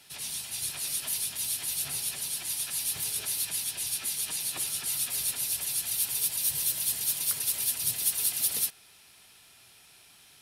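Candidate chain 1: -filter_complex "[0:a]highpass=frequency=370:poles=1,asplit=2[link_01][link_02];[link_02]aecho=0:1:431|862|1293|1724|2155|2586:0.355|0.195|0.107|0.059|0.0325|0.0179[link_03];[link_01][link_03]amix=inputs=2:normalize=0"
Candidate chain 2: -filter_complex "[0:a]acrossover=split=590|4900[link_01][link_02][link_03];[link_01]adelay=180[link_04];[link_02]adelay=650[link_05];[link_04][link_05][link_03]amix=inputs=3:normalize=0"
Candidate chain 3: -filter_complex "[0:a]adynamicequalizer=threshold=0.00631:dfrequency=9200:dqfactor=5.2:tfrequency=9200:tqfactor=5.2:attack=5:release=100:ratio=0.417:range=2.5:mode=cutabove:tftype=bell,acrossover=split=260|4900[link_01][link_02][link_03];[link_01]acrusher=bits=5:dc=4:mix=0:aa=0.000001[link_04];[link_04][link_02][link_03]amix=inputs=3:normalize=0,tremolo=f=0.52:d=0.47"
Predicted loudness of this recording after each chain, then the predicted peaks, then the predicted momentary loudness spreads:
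−28.0, −29.0, −31.5 LKFS; −10.5, −12.5, −14.5 dBFS; 10, 7, 7 LU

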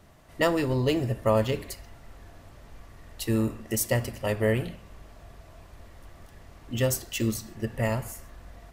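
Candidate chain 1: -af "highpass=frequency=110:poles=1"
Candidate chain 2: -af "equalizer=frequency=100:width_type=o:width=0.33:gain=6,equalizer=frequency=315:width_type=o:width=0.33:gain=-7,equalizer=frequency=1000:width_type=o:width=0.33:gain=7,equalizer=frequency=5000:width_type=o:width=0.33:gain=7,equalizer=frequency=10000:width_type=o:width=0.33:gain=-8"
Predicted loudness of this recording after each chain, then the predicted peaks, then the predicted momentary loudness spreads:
−28.5, −27.5 LKFS; −10.5, −10.0 dBFS; 12, 14 LU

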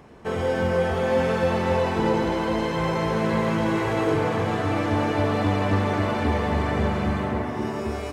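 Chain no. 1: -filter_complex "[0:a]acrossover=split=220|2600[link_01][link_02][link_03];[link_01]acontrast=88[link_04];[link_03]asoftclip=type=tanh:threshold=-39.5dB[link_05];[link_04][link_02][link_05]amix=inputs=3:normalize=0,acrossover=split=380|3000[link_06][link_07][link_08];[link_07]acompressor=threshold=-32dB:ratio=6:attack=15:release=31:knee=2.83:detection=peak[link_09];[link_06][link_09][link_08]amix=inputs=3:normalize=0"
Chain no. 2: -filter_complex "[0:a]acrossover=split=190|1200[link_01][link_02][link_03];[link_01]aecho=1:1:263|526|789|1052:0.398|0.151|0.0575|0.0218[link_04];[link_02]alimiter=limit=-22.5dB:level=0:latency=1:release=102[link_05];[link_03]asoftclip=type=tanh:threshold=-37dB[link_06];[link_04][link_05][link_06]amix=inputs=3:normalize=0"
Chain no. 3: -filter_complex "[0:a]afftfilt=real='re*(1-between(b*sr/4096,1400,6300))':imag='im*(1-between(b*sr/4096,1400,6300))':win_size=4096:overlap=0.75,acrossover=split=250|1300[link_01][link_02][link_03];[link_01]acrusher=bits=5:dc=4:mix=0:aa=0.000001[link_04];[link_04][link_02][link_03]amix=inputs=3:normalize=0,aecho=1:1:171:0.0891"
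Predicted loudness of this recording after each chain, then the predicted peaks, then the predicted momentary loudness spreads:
−22.0, −26.5, −24.5 LKFS; −7.0, −12.0, −9.0 dBFS; 5, 3, 4 LU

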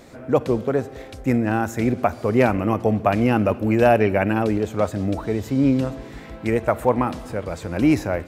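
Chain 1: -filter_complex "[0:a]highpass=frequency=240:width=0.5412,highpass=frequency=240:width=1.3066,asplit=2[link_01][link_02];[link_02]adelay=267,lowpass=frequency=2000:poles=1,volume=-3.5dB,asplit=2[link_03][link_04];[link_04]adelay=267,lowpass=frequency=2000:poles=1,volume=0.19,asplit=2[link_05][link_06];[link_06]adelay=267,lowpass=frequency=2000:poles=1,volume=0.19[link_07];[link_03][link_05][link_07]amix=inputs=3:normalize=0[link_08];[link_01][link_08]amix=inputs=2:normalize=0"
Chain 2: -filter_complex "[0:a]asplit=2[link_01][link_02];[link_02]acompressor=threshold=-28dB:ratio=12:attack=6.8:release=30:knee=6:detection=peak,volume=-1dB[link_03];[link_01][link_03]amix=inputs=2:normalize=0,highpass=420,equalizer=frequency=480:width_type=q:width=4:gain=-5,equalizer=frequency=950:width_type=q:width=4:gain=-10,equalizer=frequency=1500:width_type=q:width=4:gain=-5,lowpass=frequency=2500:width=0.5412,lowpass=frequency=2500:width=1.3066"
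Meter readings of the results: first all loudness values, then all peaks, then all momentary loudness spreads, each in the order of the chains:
−21.0, −25.5 LKFS; −4.5, −7.5 dBFS; 8, 10 LU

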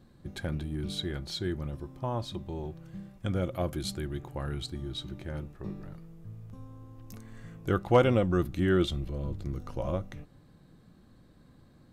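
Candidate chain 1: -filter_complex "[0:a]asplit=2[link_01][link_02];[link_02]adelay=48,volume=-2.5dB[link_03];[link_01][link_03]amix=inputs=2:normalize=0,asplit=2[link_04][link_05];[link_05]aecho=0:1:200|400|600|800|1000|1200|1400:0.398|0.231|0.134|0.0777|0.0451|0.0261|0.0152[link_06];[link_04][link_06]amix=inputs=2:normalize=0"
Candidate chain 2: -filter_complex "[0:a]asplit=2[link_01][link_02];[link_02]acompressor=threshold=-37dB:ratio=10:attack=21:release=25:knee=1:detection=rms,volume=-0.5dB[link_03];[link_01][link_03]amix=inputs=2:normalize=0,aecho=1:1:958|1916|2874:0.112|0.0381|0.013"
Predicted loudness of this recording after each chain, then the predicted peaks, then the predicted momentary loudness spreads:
−29.5, −29.5 LKFS; −7.5, −10.0 dBFS; 20, 18 LU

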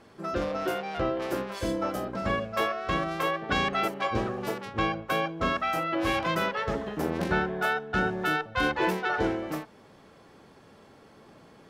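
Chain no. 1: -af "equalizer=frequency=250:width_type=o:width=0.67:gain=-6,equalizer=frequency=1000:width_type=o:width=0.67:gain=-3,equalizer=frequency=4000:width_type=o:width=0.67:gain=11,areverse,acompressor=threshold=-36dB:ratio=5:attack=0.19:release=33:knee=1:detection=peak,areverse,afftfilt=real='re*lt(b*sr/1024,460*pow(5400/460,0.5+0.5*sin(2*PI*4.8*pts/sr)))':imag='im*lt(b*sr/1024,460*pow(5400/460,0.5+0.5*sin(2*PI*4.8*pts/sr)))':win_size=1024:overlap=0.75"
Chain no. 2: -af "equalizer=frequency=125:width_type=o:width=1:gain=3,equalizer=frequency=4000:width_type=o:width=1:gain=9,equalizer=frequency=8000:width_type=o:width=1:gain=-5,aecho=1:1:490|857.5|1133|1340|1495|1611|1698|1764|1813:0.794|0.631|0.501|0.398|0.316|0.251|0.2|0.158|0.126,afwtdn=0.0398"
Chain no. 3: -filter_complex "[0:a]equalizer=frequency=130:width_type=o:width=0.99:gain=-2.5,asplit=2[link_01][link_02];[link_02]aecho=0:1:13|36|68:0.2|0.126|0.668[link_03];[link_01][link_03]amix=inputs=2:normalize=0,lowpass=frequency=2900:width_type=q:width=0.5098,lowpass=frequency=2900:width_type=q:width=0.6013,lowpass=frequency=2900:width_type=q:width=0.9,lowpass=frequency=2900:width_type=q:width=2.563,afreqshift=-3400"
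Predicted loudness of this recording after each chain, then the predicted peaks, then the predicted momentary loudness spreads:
−42.5, −25.0, −25.0 LKFS; −30.0, −9.5, −11.0 dBFS; 15, 8, 5 LU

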